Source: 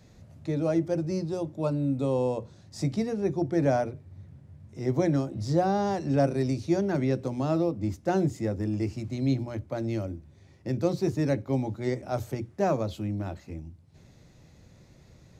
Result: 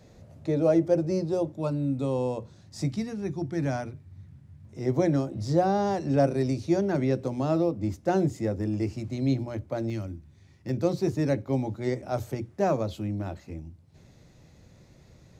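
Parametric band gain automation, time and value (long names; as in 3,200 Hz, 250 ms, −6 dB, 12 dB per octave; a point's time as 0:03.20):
parametric band 530 Hz 1.3 octaves
+6.5 dB
from 0:01.52 −2 dB
from 0:02.90 −9.5 dB
from 0:04.65 +2 dB
from 0:09.90 −8 dB
from 0:10.69 +1 dB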